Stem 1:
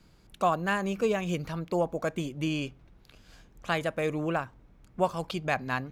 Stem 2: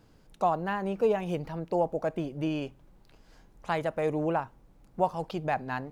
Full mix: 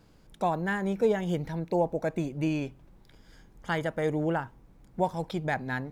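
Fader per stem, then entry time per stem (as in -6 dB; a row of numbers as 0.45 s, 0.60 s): -7.0 dB, 0.0 dB; 0.00 s, 0.00 s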